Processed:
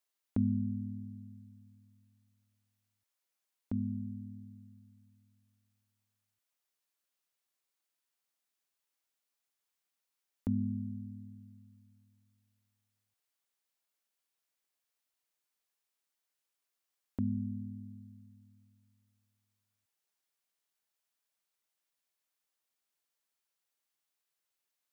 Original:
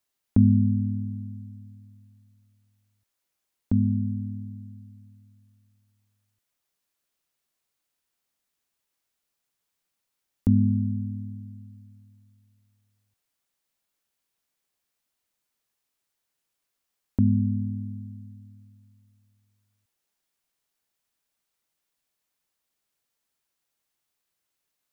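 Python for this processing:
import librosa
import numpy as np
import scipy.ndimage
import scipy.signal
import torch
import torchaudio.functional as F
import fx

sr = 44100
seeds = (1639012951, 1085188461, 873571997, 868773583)

y = fx.low_shelf(x, sr, hz=250.0, db=-11.0)
y = F.gain(torch.from_numpy(y), -5.5).numpy()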